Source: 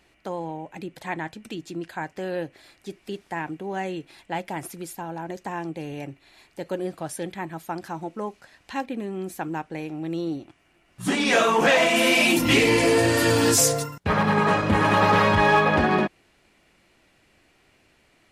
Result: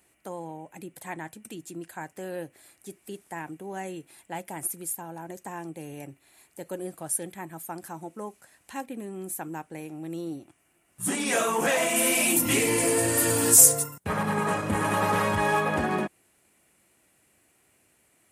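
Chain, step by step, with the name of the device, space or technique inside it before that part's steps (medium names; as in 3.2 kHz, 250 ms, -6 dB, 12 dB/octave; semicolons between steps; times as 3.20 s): budget condenser microphone (high-pass 69 Hz; resonant high shelf 6.6 kHz +13.5 dB, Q 1.5); trim -6 dB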